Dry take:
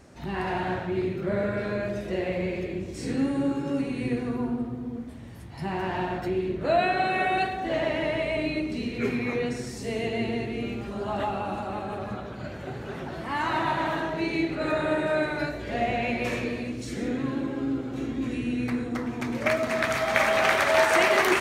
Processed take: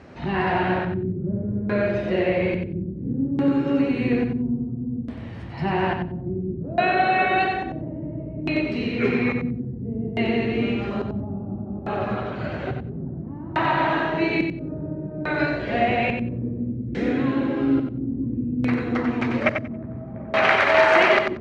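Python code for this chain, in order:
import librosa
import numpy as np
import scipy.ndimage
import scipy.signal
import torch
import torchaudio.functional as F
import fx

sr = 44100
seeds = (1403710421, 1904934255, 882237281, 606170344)

p1 = scipy.signal.sosfilt(scipy.signal.butter(2, 59.0, 'highpass', fs=sr, output='sos'), x)
p2 = fx.high_shelf(p1, sr, hz=8500.0, db=-6.5)
p3 = fx.notch(p2, sr, hz=3500.0, q=22.0)
p4 = fx.rider(p3, sr, range_db=4, speed_s=0.5)
p5 = p3 + F.gain(torch.from_numpy(p4), -2.0).numpy()
p6 = fx.filter_lfo_lowpass(p5, sr, shape='square', hz=0.59, low_hz=210.0, high_hz=3300.0, q=0.96)
y = p6 + fx.echo_feedback(p6, sr, ms=92, feedback_pct=16, wet_db=-6.5, dry=0)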